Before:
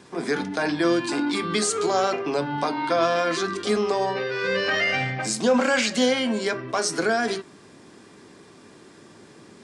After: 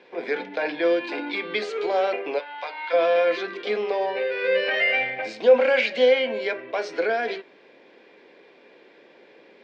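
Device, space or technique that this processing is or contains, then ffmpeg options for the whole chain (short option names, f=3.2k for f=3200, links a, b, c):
phone earpiece: -filter_complex "[0:a]asplit=3[a][b][c];[a]afade=t=out:st=2.38:d=0.02[d];[b]highpass=1k,afade=t=in:st=2.38:d=0.02,afade=t=out:st=2.92:d=0.02[e];[c]afade=t=in:st=2.92:d=0.02[f];[d][e][f]amix=inputs=3:normalize=0,highpass=430,equalizer=f=510:t=q:w=4:g=10,equalizer=f=1.2k:t=q:w=4:g=-10,equalizer=f=2.3k:t=q:w=4:g=7,lowpass=f=3.7k:w=0.5412,lowpass=f=3.7k:w=1.3066,volume=-1.5dB"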